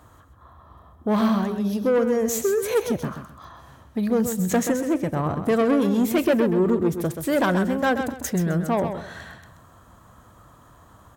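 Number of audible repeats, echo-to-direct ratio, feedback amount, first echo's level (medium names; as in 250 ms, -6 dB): 3, -7.5 dB, 26%, -8.0 dB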